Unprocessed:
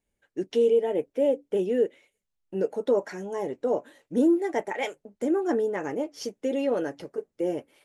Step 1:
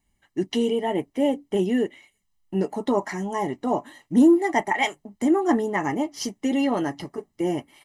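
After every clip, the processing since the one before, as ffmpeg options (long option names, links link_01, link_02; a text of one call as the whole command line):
ffmpeg -i in.wav -af "aecho=1:1:1:0.81,volume=6dB" out.wav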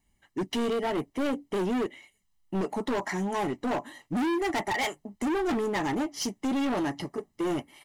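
ffmpeg -i in.wav -af "volume=25.5dB,asoftclip=hard,volume=-25.5dB" out.wav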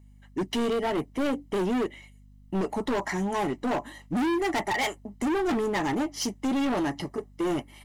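ffmpeg -i in.wav -af "aeval=exprs='val(0)+0.00224*(sin(2*PI*50*n/s)+sin(2*PI*2*50*n/s)/2+sin(2*PI*3*50*n/s)/3+sin(2*PI*4*50*n/s)/4+sin(2*PI*5*50*n/s)/5)':channel_layout=same,volume=1.5dB" out.wav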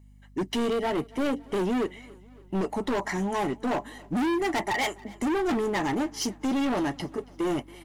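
ffmpeg -i in.wav -af "aecho=1:1:278|556|834|1112:0.0668|0.0381|0.0217|0.0124" out.wav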